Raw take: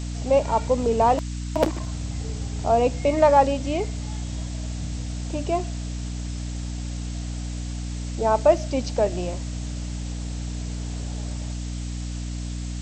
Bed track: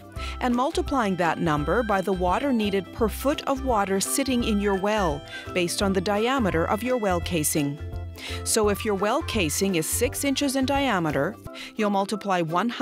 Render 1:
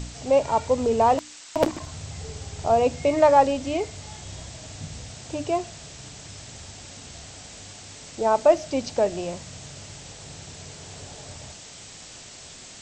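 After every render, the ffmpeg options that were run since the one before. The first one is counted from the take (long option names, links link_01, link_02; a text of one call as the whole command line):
ffmpeg -i in.wav -af "bandreject=frequency=60:width_type=h:width=4,bandreject=frequency=120:width_type=h:width=4,bandreject=frequency=180:width_type=h:width=4,bandreject=frequency=240:width_type=h:width=4,bandreject=frequency=300:width_type=h:width=4" out.wav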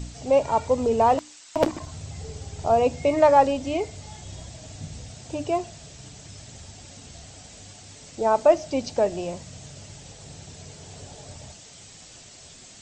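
ffmpeg -i in.wav -af "afftdn=noise_reduction=6:noise_floor=-44" out.wav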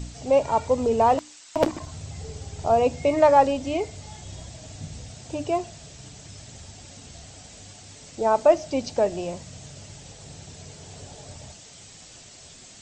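ffmpeg -i in.wav -af anull out.wav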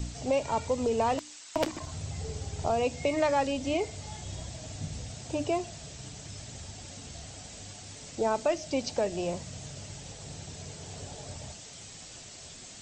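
ffmpeg -i in.wav -filter_complex "[0:a]acrossover=split=440|1600[link_01][link_02][link_03];[link_01]alimiter=level_in=1.5dB:limit=-24dB:level=0:latency=1:release=355,volume=-1.5dB[link_04];[link_02]acompressor=threshold=-30dB:ratio=6[link_05];[link_04][link_05][link_03]amix=inputs=3:normalize=0" out.wav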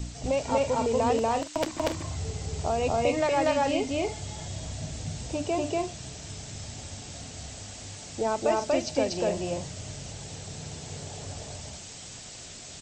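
ffmpeg -i in.wav -af "aecho=1:1:239.1|282.8:1|0.316" out.wav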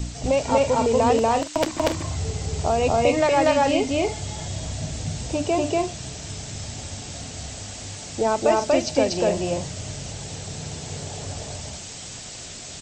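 ffmpeg -i in.wav -af "volume=6dB" out.wav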